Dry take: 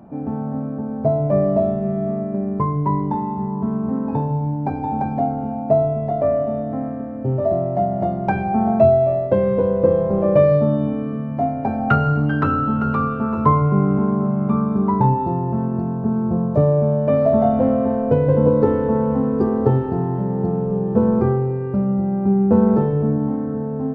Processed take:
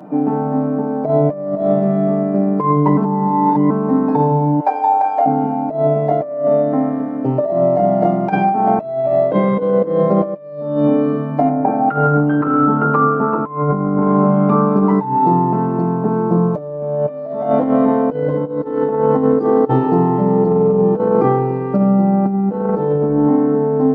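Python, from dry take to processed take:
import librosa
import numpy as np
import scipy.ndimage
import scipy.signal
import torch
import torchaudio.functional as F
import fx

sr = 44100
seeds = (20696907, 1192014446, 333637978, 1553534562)

y = fx.highpass(x, sr, hz=520.0, slope=24, at=(4.6, 5.26))
y = fx.lowpass(y, sr, hz=1500.0, slope=12, at=(11.49, 14.02))
y = fx.edit(y, sr, fx.reverse_span(start_s=2.97, length_s=0.73), tone=tone)
y = scipy.signal.sosfilt(scipy.signal.butter(4, 190.0, 'highpass', fs=sr, output='sos'), y)
y = y + 0.79 * np.pad(y, (int(6.6 * sr / 1000.0), 0))[:len(y)]
y = fx.over_compress(y, sr, threshold_db=-20.0, ratio=-0.5)
y = y * 10.0 ** (6.0 / 20.0)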